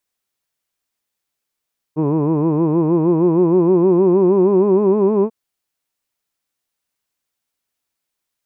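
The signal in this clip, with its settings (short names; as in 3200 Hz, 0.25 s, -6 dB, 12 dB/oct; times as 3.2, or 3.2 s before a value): formant vowel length 3.34 s, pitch 148 Hz, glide +6 st, vibrato 6.4 Hz, vibrato depth 1.15 st, F1 370 Hz, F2 1000 Hz, F3 2500 Hz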